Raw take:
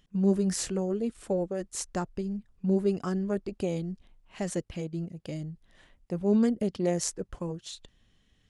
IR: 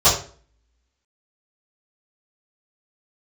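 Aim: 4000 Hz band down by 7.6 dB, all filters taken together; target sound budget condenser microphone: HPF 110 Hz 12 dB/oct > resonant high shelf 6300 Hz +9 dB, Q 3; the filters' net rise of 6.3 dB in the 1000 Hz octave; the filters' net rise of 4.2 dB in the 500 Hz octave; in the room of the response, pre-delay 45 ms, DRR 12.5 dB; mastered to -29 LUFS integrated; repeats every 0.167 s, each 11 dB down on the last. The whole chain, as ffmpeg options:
-filter_complex "[0:a]equalizer=f=500:t=o:g=4,equalizer=f=1k:t=o:g=7.5,equalizer=f=4k:t=o:g=-6,aecho=1:1:167|334|501:0.282|0.0789|0.0221,asplit=2[a][b];[1:a]atrim=start_sample=2205,adelay=45[c];[b][c]afir=irnorm=-1:irlink=0,volume=-34.5dB[d];[a][d]amix=inputs=2:normalize=0,highpass=110,highshelf=f=6.3k:t=q:w=3:g=9,volume=-2.5dB"

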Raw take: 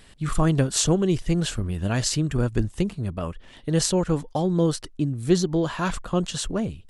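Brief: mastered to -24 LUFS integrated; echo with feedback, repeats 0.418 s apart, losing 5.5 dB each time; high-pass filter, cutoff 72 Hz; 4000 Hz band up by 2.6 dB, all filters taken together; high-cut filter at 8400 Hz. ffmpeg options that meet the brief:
-af "highpass=72,lowpass=8.4k,equalizer=f=4k:t=o:g=3.5,aecho=1:1:418|836|1254|1672|2090|2508|2926:0.531|0.281|0.149|0.079|0.0419|0.0222|0.0118,volume=-1dB"

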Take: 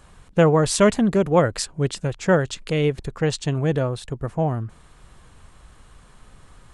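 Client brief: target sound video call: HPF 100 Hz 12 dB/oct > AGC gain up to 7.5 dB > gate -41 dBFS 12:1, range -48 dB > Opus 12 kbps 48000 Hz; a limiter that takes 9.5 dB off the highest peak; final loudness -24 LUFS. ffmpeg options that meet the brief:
-af "alimiter=limit=-14.5dB:level=0:latency=1,highpass=100,dynaudnorm=m=7.5dB,agate=range=-48dB:threshold=-41dB:ratio=12,volume=2dB" -ar 48000 -c:a libopus -b:a 12k

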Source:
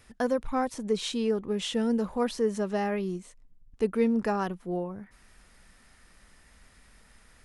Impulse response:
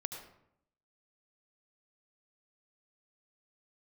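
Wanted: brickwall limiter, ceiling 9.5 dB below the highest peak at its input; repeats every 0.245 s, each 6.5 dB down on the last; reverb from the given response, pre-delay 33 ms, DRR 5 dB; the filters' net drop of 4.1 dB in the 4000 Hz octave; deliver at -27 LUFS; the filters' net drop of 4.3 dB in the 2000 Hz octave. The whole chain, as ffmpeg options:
-filter_complex "[0:a]equalizer=f=2k:t=o:g=-5,equalizer=f=4k:t=o:g=-3.5,alimiter=limit=-23.5dB:level=0:latency=1,aecho=1:1:245|490|735|980|1225|1470:0.473|0.222|0.105|0.0491|0.0231|0.0109,asplit=2[a][b];[1:a]atrim=start_sample=2205,adelay=33[c];[b][c]afir=irnorm=-1:irlink=0,volume=-4.5dB[d];[a][d]amix=inputs=2:normalize=0,volume=4.5dB"

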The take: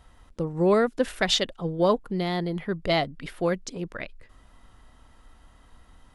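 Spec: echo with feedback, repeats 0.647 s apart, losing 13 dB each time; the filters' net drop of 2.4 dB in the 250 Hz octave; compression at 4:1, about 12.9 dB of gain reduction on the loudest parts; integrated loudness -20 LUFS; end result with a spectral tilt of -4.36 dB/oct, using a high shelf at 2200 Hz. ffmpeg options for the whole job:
-af "equalizer=f=250:t=o:g=-4,highshelf=f=2.2k:g=5,acompressor=threshold=-32dB:ratio=4,aecho=1:1:647|1294|1941:0.224|0.0493|0.0108,volume=15.5dB"

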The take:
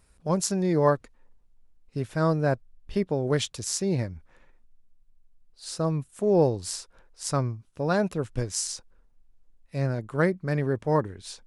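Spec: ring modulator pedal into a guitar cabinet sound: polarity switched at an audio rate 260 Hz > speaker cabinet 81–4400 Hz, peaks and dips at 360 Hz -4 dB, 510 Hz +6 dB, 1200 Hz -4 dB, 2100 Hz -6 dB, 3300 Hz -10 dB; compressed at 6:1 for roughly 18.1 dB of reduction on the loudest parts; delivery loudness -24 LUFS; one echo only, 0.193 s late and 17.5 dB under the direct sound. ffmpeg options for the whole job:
-af "acompressor=threshold=-36dB:ratio=6,aecho=1:1:193:0.133,aeval=exprs='val(0)*sgn(sin(2*PI*260*n/s))':c=same,highpass=81,equalizer=f=360:t=q:w=4:g=-4,equalizer=f=510:t=q:w=4:g=6,equalizer=f=1.2k:t=q:w=4:g=-4,equalizer=f=2.1k:t=q:w=4:g=-6,equalizer=f=3.3k:t=q:w=4:g=-10,lowpass=f=4.4k:w=0.5412,lowpass=f=4.4k:w=1.3066,volume=17.5dB"

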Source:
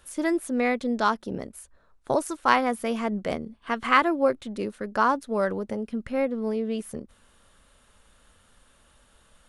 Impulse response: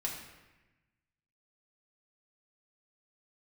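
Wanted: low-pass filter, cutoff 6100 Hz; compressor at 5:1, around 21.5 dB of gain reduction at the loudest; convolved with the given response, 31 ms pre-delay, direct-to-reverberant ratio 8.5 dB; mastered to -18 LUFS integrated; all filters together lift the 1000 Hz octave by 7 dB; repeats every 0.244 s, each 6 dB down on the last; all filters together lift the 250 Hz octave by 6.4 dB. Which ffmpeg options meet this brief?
-filter_complex "[0:a]lowpass=6.1k,equalizer=f=250:t=o:g=7,equalizer=f=1k:t=o:g=8,acompressor=threshold=-34dB:ratio=5,aecho=1:1:244|488|732|976|1220|1464:0.501|0.251|0.125|0.0626|0.0313|0.0157,asplit=2[a][b];[1:a]atrim=start_sample=2205,adelay=31[c];[b][c]afir=irnorm=-1:irlink=0,volume=-11dB[d];[a][d]amix=inputs=2:normalize=0,volume=17.5dB"

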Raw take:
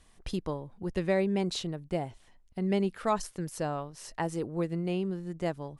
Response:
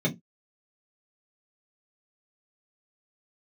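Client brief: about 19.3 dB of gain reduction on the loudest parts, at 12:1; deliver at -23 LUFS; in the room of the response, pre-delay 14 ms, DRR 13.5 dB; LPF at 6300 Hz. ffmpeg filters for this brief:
-filter_complex "[0:a]lowpass=6.3k,acompressor=threshold=-42dB:ratio=12,asplit=2[a][b];[1:a]atrim=start_sample=2205,adelay=14[c];[b][c]afir=irnorm=-1:irlink=0,volume=-23.5dB[d];[a][d]amix=inputs=2:normalize=0,volume=22.5dB"

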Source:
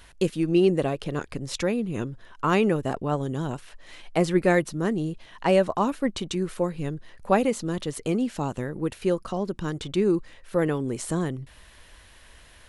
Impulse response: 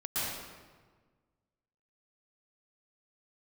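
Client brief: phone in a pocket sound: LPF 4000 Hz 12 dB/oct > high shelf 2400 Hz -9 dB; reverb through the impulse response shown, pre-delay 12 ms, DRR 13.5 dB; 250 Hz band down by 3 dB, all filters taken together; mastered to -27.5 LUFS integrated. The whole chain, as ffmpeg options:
-filter_complex "[0:a]equalizer=f=250:t=o:g=-4.5,asplit=2[a][b];[1:a]atrim=start_sample=2205,adelay=12[c];[b][c]afir=irnorm=-1:irlink=0,volume=-20.5dB[d];[a][d]amix=inputs=2:normalize=0,lowpass=4k,highshelf=f=2.4k:g=-9,volume=1dB"

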